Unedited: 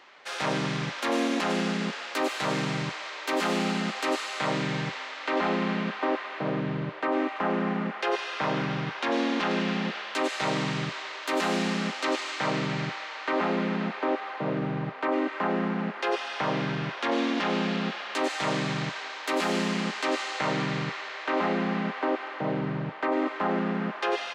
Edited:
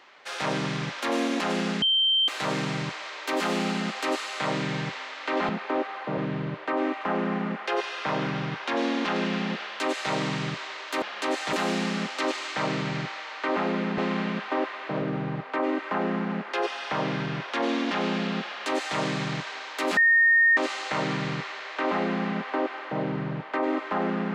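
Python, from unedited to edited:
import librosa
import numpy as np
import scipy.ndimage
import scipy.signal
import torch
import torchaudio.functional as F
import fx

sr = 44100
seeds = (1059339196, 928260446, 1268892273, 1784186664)

y = fx.edit(x, sr, fx.bleep(start_s=1.82, length_s=0.46, hz=3130.0, db=-19.0),
    fx.swap(start_s=5.49, length_s=1.04, other_s=13.82, other_length_s=0.69),
    fx.duplicate(start_s=17.95, length_s=0.51, to_s=11.37),
    fx.bleep(start_s=19.46, length_s=0.6, hz=1840.0, db=-15.5), tone=tone)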